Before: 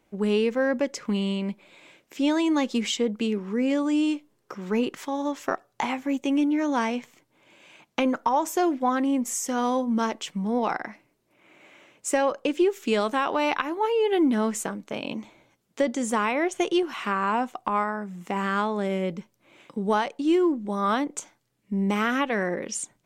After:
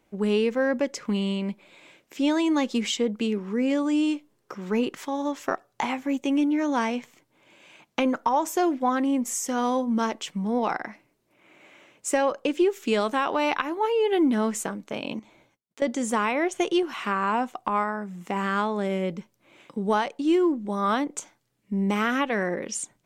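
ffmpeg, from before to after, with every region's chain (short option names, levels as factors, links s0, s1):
-filter_complex "[0:a]asettb=1/sr,asplit=3[s0][s1][s2];[s0]atrim=end=15.194[s3];[s1]atrim=start=15.19:end=15.82,asetpts=PTS-STARTPTS,afade=t=in:d=0.004:c=qsin,afade=t=out:st=0.626:d=0.004:c=qsin,agate=range=0.0224:threshold=0.001:ratio=3:release=100:detection=peak,acompressor=threshold=0.00251:ratio=2:attack=3.2:release=140:knee=1:detection=peak[s4];[s2]atrim=start=15.816[s5];[s3][s4]acrossfade=d=0.004:c1=hsin:c2=qsin[s6];[s6][s5]acrossfade=d=0.004:c1=qsin:c2=hsin"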